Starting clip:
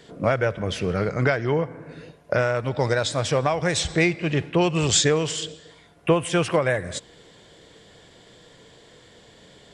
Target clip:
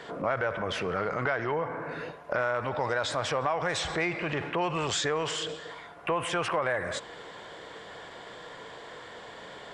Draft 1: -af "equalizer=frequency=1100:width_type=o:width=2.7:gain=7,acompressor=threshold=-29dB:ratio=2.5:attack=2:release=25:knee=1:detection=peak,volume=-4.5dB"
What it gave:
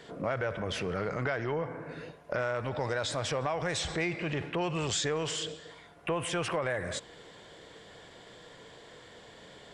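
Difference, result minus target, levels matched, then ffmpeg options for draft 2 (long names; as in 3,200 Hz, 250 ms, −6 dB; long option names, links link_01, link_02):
1,000 Hz band −3.5 dB
-af "equalizer=frequency=1100:width_type=o:width=2.7:gain=18.5,acompressor=threshold=-29dB:ratio=2.5:attack=2:release=25:knee=1:detection=peak,volume=-4.5dB"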